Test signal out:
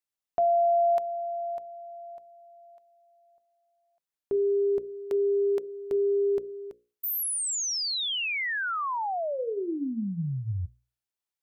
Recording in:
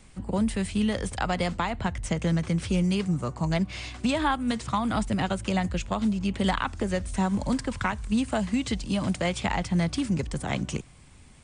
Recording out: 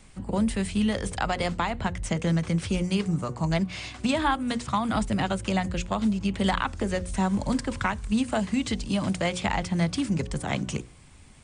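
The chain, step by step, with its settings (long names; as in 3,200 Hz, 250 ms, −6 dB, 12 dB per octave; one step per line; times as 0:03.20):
mains-hum notches 60/120/180/240/300/360/420/480/540 Hz
level +1 dB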